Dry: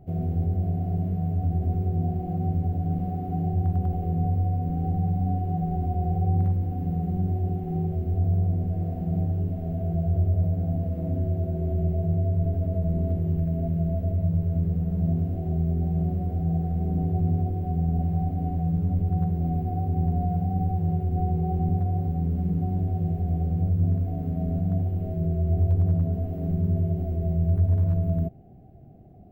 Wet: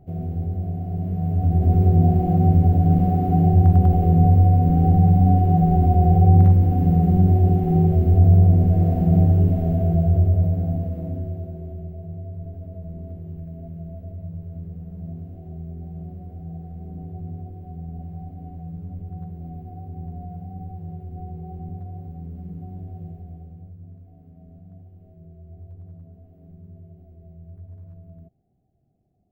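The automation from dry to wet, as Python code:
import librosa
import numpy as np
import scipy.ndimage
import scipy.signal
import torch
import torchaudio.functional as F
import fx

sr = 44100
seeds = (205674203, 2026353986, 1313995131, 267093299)

y = fx.gain(x, sr, db=fx.line((0.89, -1.0), (1.83, 10.0), (9.46, 10.0), (10.74, 2.5), (11.9, -10.0), (23.04, -10.0), (23.81, -20.0)))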